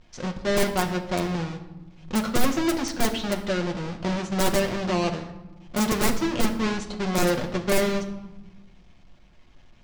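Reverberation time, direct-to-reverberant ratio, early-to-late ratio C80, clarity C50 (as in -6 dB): 1.1 s, 3.0 dB, 13.0 dB, 10.5 dB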